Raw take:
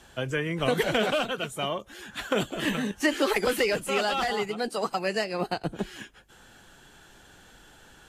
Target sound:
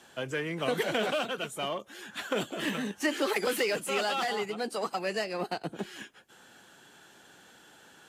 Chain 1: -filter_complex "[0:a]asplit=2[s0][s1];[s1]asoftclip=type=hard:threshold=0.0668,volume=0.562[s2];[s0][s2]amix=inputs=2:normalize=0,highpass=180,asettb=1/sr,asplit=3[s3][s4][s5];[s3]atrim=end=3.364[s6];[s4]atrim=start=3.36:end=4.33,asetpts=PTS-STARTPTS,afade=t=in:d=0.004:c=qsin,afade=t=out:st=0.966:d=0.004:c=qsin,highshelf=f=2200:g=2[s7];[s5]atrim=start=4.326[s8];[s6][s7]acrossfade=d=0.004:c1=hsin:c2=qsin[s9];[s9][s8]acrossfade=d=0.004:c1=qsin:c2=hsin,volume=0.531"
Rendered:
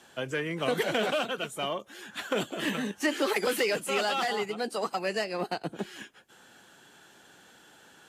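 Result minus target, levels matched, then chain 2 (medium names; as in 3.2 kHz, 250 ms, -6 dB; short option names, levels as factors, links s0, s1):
hard clipper: distortion -6 dB
-filter_complex "[0:a]asplit=2[s0][s1];[s1]asoftclip=type=hard:threshold=0.0266,volume=0.562[s2];[s0][s2]amix=inputs=2:normalize=0,highpass=180,asettb=1/sr,asplit=3[s3][s4][s5];[s3]atrim=end=3.364[s6];[s4]atrim=start=3.36:end=4.33,asetpts=PTS-STARTPTS,afade=t=in:d=0.004:c=qsin,afade=t=out:st=0.966:d=0.004:c=qsin,highshelf=f=2200:g=2[s7];[s5]atrim=start=4.326[s8];[s6][s7]acrossfade=d=0.004:c1=hsin:c2=qsin[s9];[s9][s8]acrossfade=d=0.004:c1=qsin:c2=hsin,volume=0.531"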